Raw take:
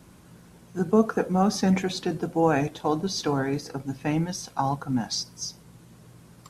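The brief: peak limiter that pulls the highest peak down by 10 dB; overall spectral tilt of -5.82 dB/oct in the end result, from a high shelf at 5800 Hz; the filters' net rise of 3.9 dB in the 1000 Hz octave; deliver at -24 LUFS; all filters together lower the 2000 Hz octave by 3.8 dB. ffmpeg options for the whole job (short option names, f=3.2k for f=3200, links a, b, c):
-af "equalizer=f=1k:t=o:g=7,equalizer=f=2k:t=o:g=-8,highshelf=f=5.8k:g=-7,volume=5dB,alimiter=limit=-11.5dB:level=0:latency=1"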